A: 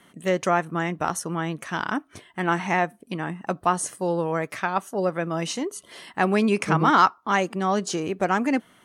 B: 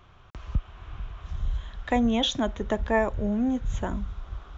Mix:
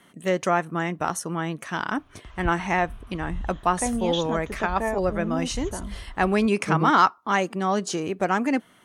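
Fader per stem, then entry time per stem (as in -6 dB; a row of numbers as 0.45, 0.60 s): -0.5, -4.0 dB; 0.00, 1.90 s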